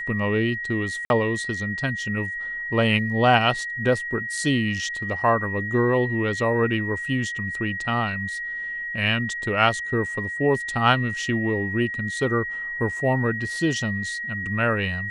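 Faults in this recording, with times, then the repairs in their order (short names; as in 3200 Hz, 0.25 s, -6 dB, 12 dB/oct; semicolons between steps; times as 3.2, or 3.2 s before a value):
tone 1900 Hz -28 dBFS
1.05–1.1 gap 51 ms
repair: notch 1900 Hz, Q 30; interpolate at 1.05, 51 ms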